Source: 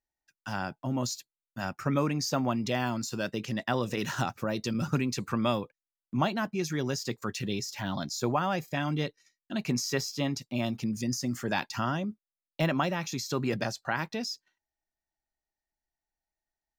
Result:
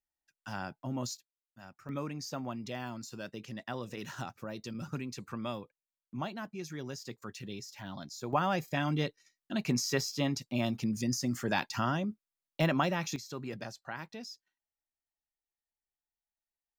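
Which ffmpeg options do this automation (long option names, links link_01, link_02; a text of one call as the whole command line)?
ffmpeg -i in.wav -af "asetnsamples=nb_out_samples=441:pad=0,asendcmd='1.17 volume volume -17.5dB;1.89 volume volume -10dB;8.33 volume volume -1dB;13.16 volume volume -10.5dB',volume=-5.5dB" out.wav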